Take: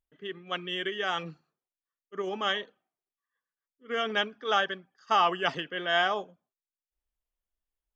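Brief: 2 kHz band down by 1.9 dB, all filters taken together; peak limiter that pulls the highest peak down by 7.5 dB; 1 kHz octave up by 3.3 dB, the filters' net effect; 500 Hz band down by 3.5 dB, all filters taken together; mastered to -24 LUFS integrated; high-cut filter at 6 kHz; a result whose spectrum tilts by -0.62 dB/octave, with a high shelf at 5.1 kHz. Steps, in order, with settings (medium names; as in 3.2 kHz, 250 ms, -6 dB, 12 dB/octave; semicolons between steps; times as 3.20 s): low-pass 6 kHz; peaking EQ 500 Hz -8.5 dB; peaking EQ 1 kHz +9 dB; peaking EQ 2 kHz -5 dB; treble shelf 5.1 kHz -9 dB; trim +7.5 dB; peak limiter -9.5 dBFS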